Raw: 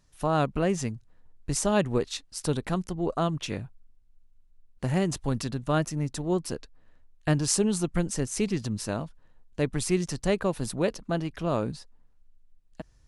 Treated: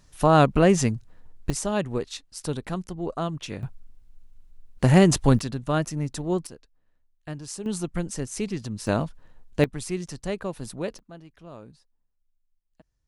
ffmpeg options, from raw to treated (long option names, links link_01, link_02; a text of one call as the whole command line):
ffmpeg -i in.wav -af "asetnsamples=nb_out_samples=441:pad=0,asendcmd='1.5 volume volume -2dB;3.63 volume volume 10dB;5.39 volume volume 1dB;6.47 volume volume -11.5dB;7.66 volume volume -2dB;8.87 volume volume 7dB;9.64 volume volume -4.5dB;10.99 volume volume -16dB',volume=8dB" out.wav